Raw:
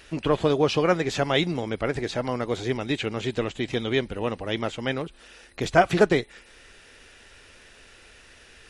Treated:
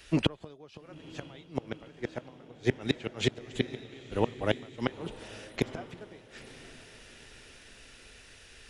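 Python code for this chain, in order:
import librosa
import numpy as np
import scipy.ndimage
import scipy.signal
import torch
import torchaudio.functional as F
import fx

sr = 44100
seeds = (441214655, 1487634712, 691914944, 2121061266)

y = fx.gate_flip(x, sr, shuts_db=-16.0, range_db=-29)
y = fx.echo_diffused(y, sr, ms=928, feedback_pct=51, wet_db=-12.0)
y = fx.band_widen(y, sr, depth_pct=40)
y = F.gain(torch.from_numpy(y), 2.5).numpy()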